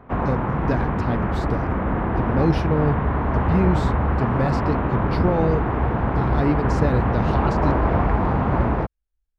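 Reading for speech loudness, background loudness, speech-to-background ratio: −25.5 LKFS, −22.5 LKFS, −3.0 dB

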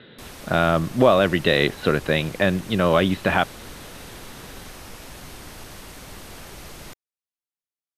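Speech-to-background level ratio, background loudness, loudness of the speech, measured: 19.5 dB, −40.0 LKFS, −20.5 LKFS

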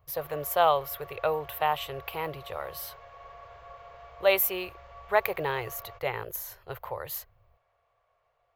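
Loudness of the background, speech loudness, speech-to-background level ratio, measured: −48.5 LKFS, −30.0 LKFS, 18.5 dB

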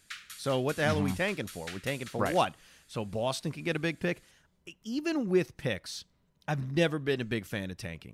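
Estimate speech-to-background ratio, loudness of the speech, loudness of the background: 13.0 dB, −32.0 LKFS, −45.0 LKFS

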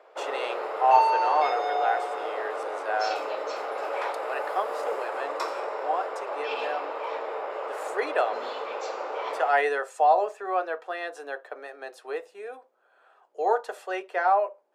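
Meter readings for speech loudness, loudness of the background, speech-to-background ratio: −28.5 LKFS, −30.5 LKFS, 2.0 dB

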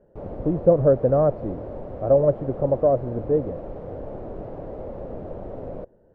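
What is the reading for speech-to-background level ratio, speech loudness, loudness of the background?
14.5 dB, −21.5 LKFS, −36.0 LKFS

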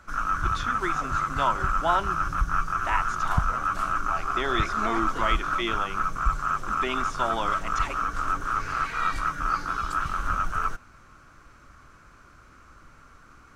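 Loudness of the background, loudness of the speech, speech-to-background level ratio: −27.5 LKFS, −31.5 LKFS, −4.0 dB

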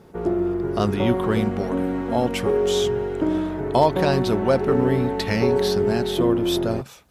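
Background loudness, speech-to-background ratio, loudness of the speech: −24.0 LKFS, −0.5 dB, −24.5 LKFS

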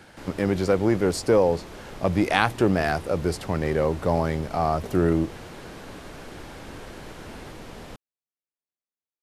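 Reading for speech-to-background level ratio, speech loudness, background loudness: 17.5 dB, −24.0 LKFS, −41.5 LKFS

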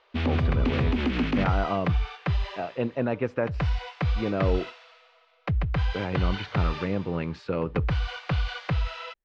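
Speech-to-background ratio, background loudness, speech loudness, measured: −2.0 dB, −29.0 LKFS, −31.0 LKFS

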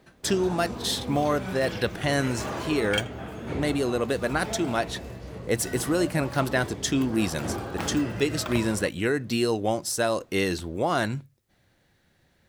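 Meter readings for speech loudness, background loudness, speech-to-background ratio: −27.0 LKFS, −35.0 LKFS, 8.0 dB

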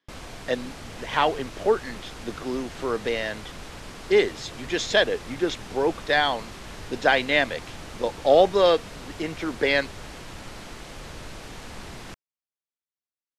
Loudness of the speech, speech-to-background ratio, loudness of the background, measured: −24.0 LKFS, 16.5 dB, −40.5 LKFS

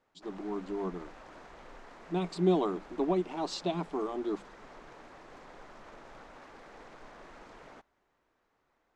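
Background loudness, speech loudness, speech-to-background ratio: −52.0 LKFS, −33.0 LKFS, 19.0 dB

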